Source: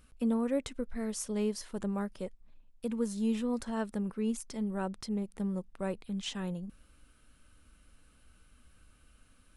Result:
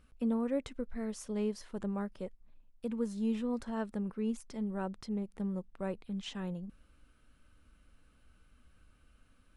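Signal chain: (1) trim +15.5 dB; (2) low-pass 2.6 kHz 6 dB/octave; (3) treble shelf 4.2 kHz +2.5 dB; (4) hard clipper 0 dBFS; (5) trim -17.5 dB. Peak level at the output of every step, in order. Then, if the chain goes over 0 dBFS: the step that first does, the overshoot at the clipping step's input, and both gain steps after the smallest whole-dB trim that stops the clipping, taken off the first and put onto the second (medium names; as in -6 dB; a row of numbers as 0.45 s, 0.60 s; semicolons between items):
-5.5 dBFS, -5.5 dBFS, -5.5 dBFS, -5.5 dBFS, -23.0 dBFS; nothing clips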